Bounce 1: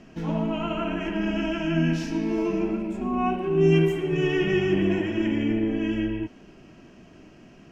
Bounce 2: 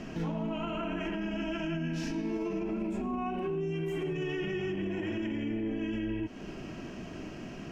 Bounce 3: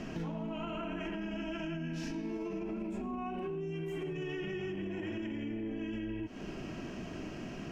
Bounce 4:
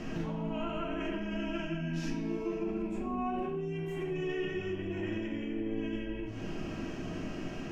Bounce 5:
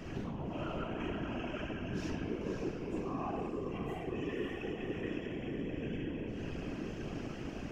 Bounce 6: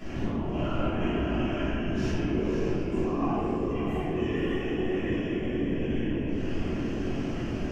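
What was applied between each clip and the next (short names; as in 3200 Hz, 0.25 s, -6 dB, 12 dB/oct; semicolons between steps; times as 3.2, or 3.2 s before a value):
compressor 2.5:1, threshold -37 dBFS, peak gain reduction 14.5 dB; limiter -34 dBFS, peak gain reduction 10.5 dB; gain +7.5 dB
compressor, threshold -35 dBFS, peak gain reduction 5.5 dB
shoebox room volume 61 m³, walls mixed, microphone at 0.59 m
diffused feedback echo 0.555 s, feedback 45%, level -5 dB; whisperiser; gain -4.5 dB
shoebox room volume 320 m³, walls mixed, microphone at 3.1 m; gain -1 dB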